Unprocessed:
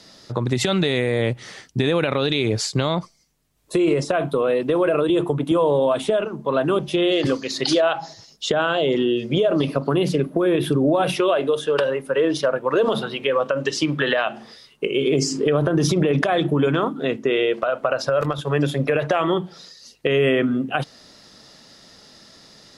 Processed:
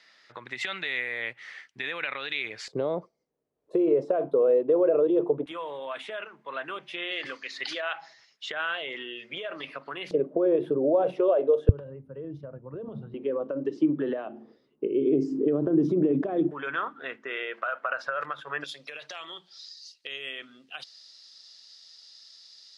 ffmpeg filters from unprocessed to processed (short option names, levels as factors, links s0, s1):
-af "asetnsamples=n=441:p=0,asendcmd='2.68 bandpass f 470;5.46 bandpass f 2000;10.11 bandpass f 500;11.69 bandpass f 100;13.14 bandpass f 310;16.51 bandpass f 1600;18.64 bandpass f 4600',bandpass=f=2000:t=q:w=2.5:csg=0"